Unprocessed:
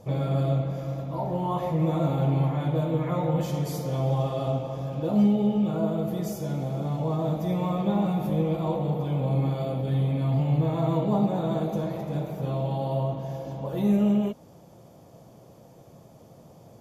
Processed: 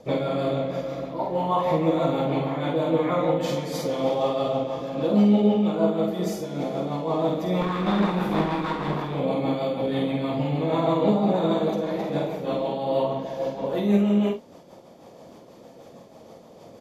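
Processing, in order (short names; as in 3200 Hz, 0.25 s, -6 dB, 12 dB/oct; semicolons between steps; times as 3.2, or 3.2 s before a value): 7.61–9.15 minimum comb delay 0.85 ms; rotary speaker horn 6.3 Hz; graphic EQ 125/250/500/1000/2000/4000/8000 Hz -7/+8/+7/+8/+9/+10/+3 dB; early reflections 49 ms -4 dB, 71 ms -11 dB; noise-modulated level, depth 65%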